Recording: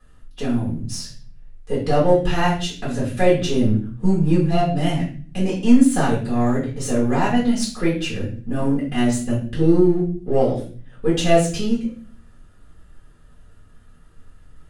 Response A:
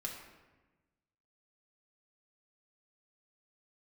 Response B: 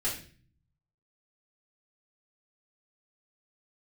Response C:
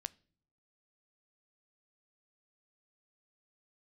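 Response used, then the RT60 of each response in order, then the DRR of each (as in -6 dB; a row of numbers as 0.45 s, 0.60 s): B; 1.2 s, 0.40 s, no single decay rate; -1.5 dB, -9.0 dB, 16.5 dB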